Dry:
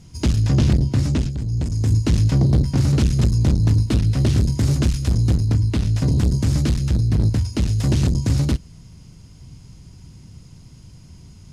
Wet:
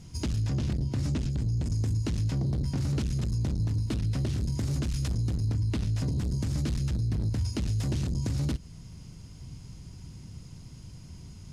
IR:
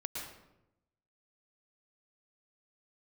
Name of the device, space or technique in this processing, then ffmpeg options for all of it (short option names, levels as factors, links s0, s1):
stacked limiters: -af "alimiter=limit=0.335:level=0:latency=1:release=403,alimiter=limit=0.168:level=0:latency=1:release=122,alimiter=limit=0.106:level=0:latency=1:release=57,volume=0.794"